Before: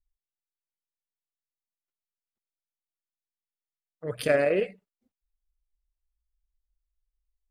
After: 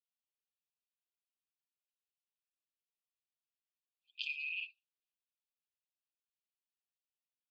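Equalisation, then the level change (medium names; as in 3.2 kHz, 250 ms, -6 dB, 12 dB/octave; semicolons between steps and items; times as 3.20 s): brick-wall FIR band-pass 2.4–7.8 kHz; distance through air 370 m; +6.5 dB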